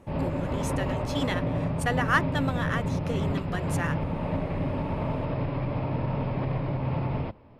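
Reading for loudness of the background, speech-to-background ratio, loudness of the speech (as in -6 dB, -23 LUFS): -29.5 LUFS, -2.5 dB, -32.0 LUFS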